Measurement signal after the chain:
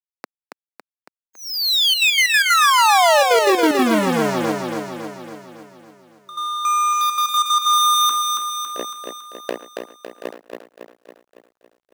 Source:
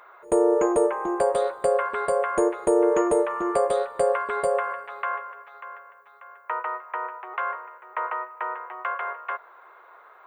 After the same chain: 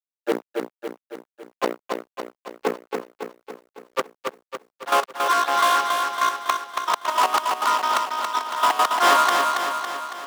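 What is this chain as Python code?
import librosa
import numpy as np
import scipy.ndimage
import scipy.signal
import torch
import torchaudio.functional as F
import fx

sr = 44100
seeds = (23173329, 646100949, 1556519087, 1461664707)

y = scipy.signal.sosfilt(scipy.signal.butter(2, 1300.0, 'lowpass', fs=sr, output='sos'), x)
y = fx.gate_flip(y, sr, shuts_db=-22.0, range_db=-38)
y = fx.noise_reduce_blind(y, sr, reduce_db=29)
y = fx.hum_notches(y, sr, base_hz=60, count=10)
y = fx.fuzz(y, sr, gain_db=47.0, gate_db=-53.0)
y = scipy.signal.sosfilt(scipy.signal.butter(4, 240.0, 'highpass', fs=sr, output='sos'), y)
y = fx.step_gate(y, sr, bpm=186, pattern='xxxxxxxx.x.x.x.x', floor_db=-12.0, edge_ms=4.5)
y = fx.echo_feedback(y, sr, ms=278, feedback_pct=57, wet_db=-4.5)
y = fx.quant_companded(y, sr, bits=6)
y = y * librosa.db_to_amplitude(-1.0)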